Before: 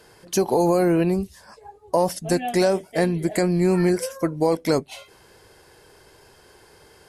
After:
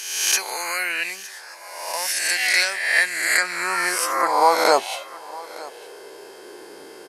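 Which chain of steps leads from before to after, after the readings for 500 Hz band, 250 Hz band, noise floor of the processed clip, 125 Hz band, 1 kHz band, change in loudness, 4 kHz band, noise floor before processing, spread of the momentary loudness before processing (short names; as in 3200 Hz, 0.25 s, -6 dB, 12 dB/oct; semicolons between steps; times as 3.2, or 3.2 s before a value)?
-5.0 dB, -16.5 dB, -42 dBFS, under -25 dB, +6.5 dB, +2.0 dB, +11.5 dB, -53 dBFS, 8 LU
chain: spectral swells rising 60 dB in 1.10 s; high-pass sweep 2000 Hz -> 310 Hz, 2.83–6.69; echo 0.911 s -19.5 dB; gain +5 dB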